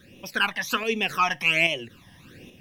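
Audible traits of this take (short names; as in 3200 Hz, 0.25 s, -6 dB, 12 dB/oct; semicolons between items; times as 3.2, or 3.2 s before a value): tremolo saw up 1.2 Hz, depth 50%; phasing stages 12, 1.3 Hz, lowest notch 420–1500 Hz; a quantiser's noise floor 12-bit, dither none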